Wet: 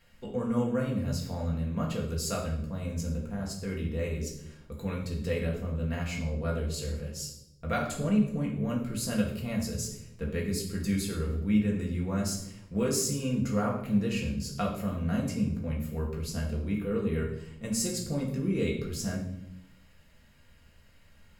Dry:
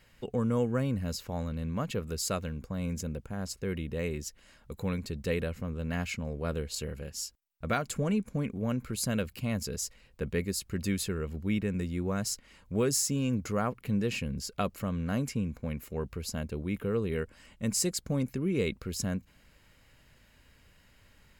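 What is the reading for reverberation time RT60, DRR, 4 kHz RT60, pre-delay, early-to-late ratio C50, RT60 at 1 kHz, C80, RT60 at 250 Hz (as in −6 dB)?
0.85 s, −2.5 dB, 0.65 s, 4 ms, 5.5 dB, 0.70 s, 9.0 dB, 1.1 s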